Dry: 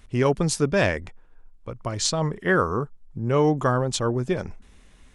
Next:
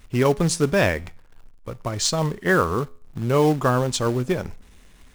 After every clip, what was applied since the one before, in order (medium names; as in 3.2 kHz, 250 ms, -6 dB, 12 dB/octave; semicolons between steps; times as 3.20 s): in parallel at -4 dB: companded quantiser 4-bit; on the sum: feedback comb 84 Hz, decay 0.48 s, harmonics all, mix 30%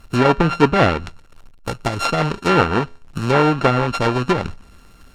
sorted samples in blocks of 32 samples; harmonic-percussive split percussive +7 dB; low-pass that closes with the level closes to 2.7 kHz, closed at -14 dBFS; trim +2 dB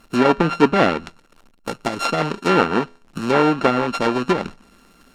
resonant low shelf 150 Hz -10.5 dB, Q 1.5; trim -1.5 dB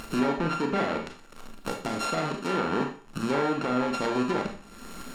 upward compressor, threshold -22 dBFS; peak limiter -13 dBFS, peak gain reduction 11.5 dB; Schroeder reverb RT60 0.41 s, combs from 28 ms, DRR 3 dB; trim -6 dB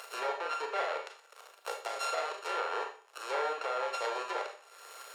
steep high-pass 450 Hz 48 dB/octave; trim -4 dB